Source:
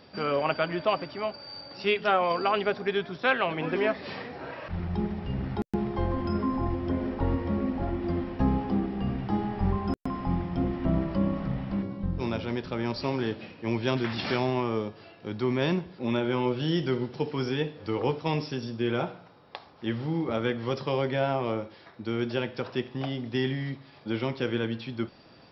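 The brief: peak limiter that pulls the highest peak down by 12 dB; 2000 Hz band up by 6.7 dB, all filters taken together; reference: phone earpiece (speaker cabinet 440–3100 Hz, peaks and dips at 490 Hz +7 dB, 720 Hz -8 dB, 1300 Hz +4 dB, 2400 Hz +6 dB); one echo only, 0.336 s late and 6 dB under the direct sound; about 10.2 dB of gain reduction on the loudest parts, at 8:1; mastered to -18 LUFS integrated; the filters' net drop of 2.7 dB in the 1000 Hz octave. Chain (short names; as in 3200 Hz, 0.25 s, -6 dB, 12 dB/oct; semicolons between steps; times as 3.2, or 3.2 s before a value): bell 1000 Hz -6 dB; bell 2000 Hz +7 dB; compressor 8:1, threshold -30 dBFS; limiter -28.5 dBFS; speaker cabinet 440–3100 Hz, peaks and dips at 490 Hz +7 dB, 720 Hz -8 dB, 1300 Hz +4 dB, 2400 Hz +6 dB; echo 0.336 s -6 dB; gain +22 dB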